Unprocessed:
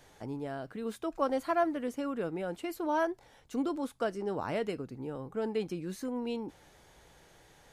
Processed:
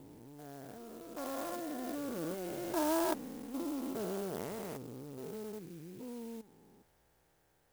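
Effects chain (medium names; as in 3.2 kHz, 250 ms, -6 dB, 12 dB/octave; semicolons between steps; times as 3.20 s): spectrogram pixelated in time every 400 ms; Doppler pass-by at 3.04 s, 9 m/s, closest 6.9 m; sampling jitter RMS 0.075 ms; trim +4 dB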